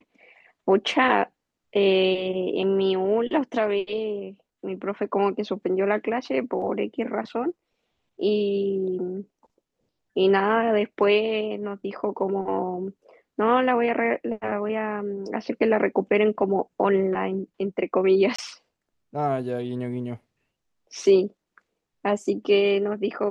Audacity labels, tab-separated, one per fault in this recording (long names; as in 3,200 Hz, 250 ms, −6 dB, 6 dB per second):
18.360000	18.390000	drop-out 25 ms